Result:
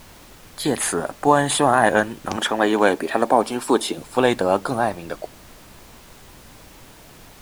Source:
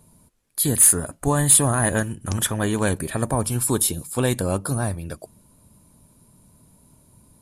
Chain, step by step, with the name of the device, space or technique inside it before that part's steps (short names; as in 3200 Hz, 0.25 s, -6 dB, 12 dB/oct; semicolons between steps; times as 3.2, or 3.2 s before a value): horn gramophone (BPF 300–3900 Hz; bell 790 Hz +7 dB 0.39 oct; wow and flutter; pink noise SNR 23 dB); 2.36–3.98 resonant low shelf 190 Hz -7.5 dB, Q 1.5; gain +6.5 dB